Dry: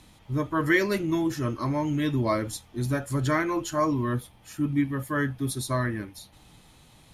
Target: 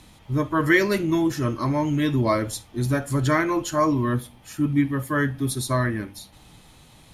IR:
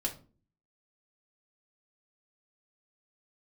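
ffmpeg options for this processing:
-filter_complex "[0:a]asplit=2[s0][s1];[1:a]atrim=start_sample=2205,adelay=54[s2];[s1][s2]afir=irnorm=-1:irlink=0,volume=0.0668[s3];[s0][s3]amix=inputs=2:normalize=0,volume=1.58"

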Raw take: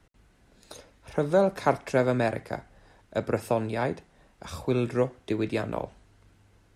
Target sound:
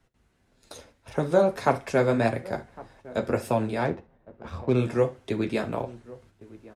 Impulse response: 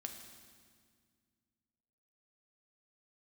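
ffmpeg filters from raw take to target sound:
-filter_complex "[0:a]asplit=2[s0][s1];[s1]adelay=1108,volume=0.1,highshelf=f=4000:g=-24.9[s2];[s0][s2]amix=inputs=2:normalize=0,asettb=1/sr,asplit=3[s3][s4][s5];[s3]atrim=end=3.854[s6];[s4]atrim=start=3.85:end=4.76,asetpts=PTS-STARTPTS,afade=t=in:d=0.004:c=qsin,afade=t=out:st=0.906:d=0.004:c=qsin,adynamicsmooth=sensitivity=6:basefreq=1500[s7];[s5]atrim=start=4.756[s8];[s6][s7]acrossfade=d=0.004:c1=hsin:c2=qsin[s9];[s9][s8]acrossfade=d=0.004:c1=qsin:c2=hsin,flanger=delay=7.4:depth=6.5:regen=-29:speed=1.7:shape=sinusoidal,agate=range=0.447:threshold=0.00112:ratio=16:detection=peak,asplit=2[s10][s11];[1:a]atrim=start_sample=2205,atrim=end_sample=3528[s12];[s11][s12]afir=irnorm=-1:irlink=0,volume=1.26[s13];[s10][s13]amix=inputs=2:normalize=0"

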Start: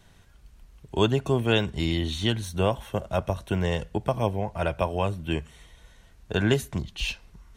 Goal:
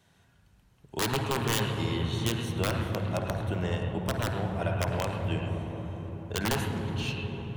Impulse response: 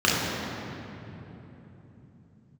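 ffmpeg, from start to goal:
-filter_complex "[0:a]highpass=94,aeval=exprs='(mod(5.31*val(0)+1,2)-1)/5.31':c=same,asplit=2[s0][s1];[1:a]atrim=start_sample=2205,asetrate=25578,aresample=44100,adelay=51[s2];[s1][s2]afir=irnorm=-1:irlink=0,volume=0.0596[s3];[s0][s3]amix=inputs=2:normalize=0,volume=0.473"

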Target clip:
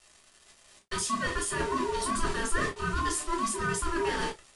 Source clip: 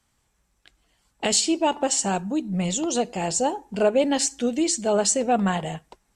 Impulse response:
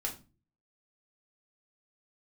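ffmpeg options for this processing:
-filter_complex "[0:a]aeval=exprs='val(0)+0.5*0.0668*sgn(val(0))':c=same,agate=range=0.1:threshold=0.0501:ratio=16:detection=peak,areverse,acompressor=threshold=0.0501:ratio=16,areverse,aeval=exprs='val(0)*sin(2*PI*500*n/s)':c=same,aresample=16000,acrusher=bits=7:mix=0:aa=0.000001,aresample=44100[s0];[1:a]atrim=start_sample=2205,atrim=end_sample=3969[s1];[s0][s1]afir=irnorm=-1:irlink=0,asetrate=59535,aresample=44100"

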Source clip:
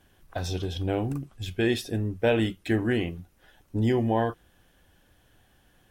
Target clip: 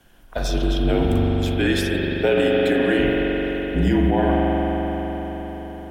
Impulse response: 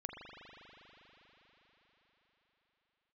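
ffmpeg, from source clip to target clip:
-filter_complex "[0:a]afreqshift=-45,asplit=3[s0][s1][s2];[s0]afade=t=out:st=1.3:d=0.02[s3];[s1]highpass=f=240:w=0.5412,highpass=f=240:w=1.3066,afade=t=in:st=1.3:d=0.02,afade=t=out:st=2.98:d=0.02[s4];[s2]afade=t=in:st=2.98:d=0.02[s5];[s3][s4][s5]amix=inputs=3:normalize=0[s6];[1:a]atrim=start_sample=2205,asetrate=41895,aresample=44100[s7];[s6][s7]afir=irnorm=-1:irlink=0,alimiter=level_in=8.41:limit=0.891:release=50:level=0:latency=1,volume=0.398"

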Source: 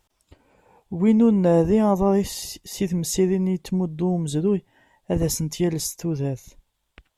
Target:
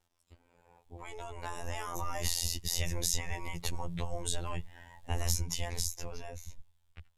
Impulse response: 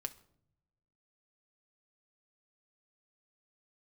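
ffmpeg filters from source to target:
-filter_complex "[0:a]afftfilt=real='re*lt(hypot(re,im),0.224)':imag='im*lt(hypot(re,im),0.224)':win_size=1024:overlap=0.75,acrossover=split=98|610|6200[s0][s1][s2][s3];[s0]acompressor=threshold=0.00398:ratio=4[s4];[s1]acompressor=threshold=0.00398:ratio=4[s5];[s2]acompressor=threshold=0.00891:ratio=4[s6];[s3]acompressor=threshold=0.00891:ratio=4[s7];[s4][s5][s6][s7]amix=inputs=4:normalize=0,afftfilt=real='hypot(re,im)*cos(PI*b)':imag='0':win_size=2048:overlap=0.75,dynaudnorm=f=240:g=13:m=6.68,asubboost=boost=8.5:cutoff=96,volume=0.531"

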